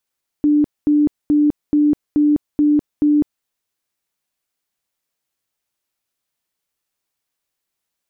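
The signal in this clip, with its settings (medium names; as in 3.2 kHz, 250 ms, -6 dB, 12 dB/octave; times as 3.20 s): tone bursts 296 Hz, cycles 60, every 0.43 s, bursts 7, -10.5 dBFS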